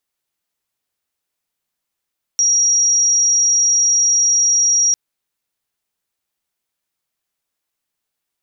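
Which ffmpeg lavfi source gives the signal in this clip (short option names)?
-f lavfi -i "aevalsrc='0.282*sin(2*PI*5690*t)':d=2.55:s=44100"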